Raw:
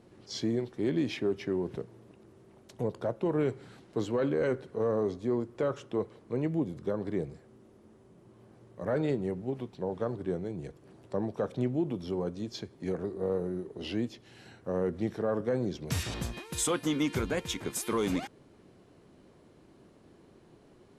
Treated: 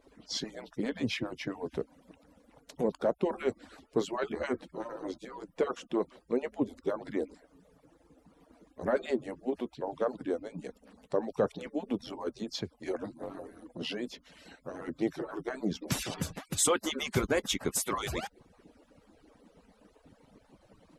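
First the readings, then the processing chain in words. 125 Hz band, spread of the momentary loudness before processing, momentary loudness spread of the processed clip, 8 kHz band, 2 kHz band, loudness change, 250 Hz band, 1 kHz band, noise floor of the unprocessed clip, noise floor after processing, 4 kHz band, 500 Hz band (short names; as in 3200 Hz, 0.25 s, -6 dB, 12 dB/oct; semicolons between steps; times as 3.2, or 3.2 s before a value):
-6.5 dB, 9 LU, 12 LU, +3.5 dB, +2.5 dB, -1.5 dB, -3.0 dB, +2.0 dB, -59 dBFS, -67 dBFS, +3.0 dB, -2.0 dB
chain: median-filter separation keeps percussive; gain +4 dB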